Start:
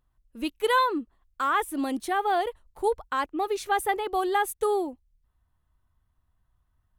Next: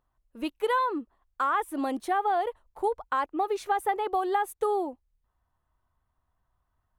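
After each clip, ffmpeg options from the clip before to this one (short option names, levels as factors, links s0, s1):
-af "equalizer=f=790:t=o:w=2.6:g=10.5,acompressor=threshold=0.158:ratio=6,volume=0.473"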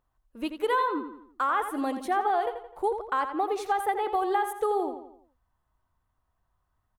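-filter_complex "[0:a]asplit=2[s0][s1];[s1]adelay=85,lowpass=f=4800:p=1,volume=0.376,asplit=2[s2][s3];[s3]adelay=85,lowpass=f=4800:p=1,volume=0.45,asplit=2[s4][s5];[s5]adelay=85,lowpass=f=4800:p=1,volume=0.45,asplit=2[s6][s7];[s7]adelay=85,lowpass=f=4800:p=1,volume=0.45,asplit=2[s8][s9];[s9]adelay=85,lowpass=f=4800:p=1,volume=0.45[s10];[s0][s2][s4][s6][s8][s10]amix=inputs=6:normalize=0"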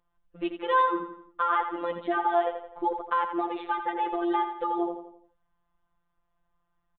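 -af "afftfilt=real='hypot(re,im)*cos(PI*b)':imag='0':win_size=1024:overlap=0.75,aresample=8000,aresample=44100,volume=1.68"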